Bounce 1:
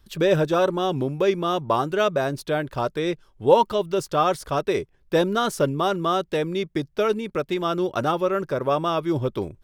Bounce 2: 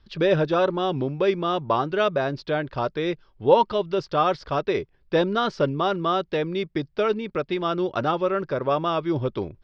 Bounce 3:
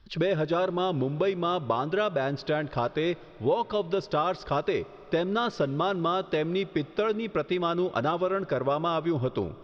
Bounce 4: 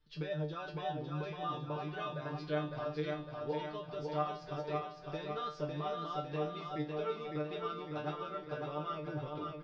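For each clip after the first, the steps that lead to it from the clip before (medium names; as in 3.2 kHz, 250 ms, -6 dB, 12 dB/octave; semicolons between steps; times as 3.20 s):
elliptic low-pass 5 kHz, stop band 80 dB
compression 5:1, threshold -24 dBFS, peak gain reduction 12.5 dB; on a send at -19.5 dB: reverberation RT60 4.8 s, pre-delay 30 ms; on the sum: trim +1 dB
feedback comb 150 Hz, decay 0.24 s, harmonics all, mix 100%; feedback delay 555 ms, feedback 54%, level -4 dB; trim -3.5 dB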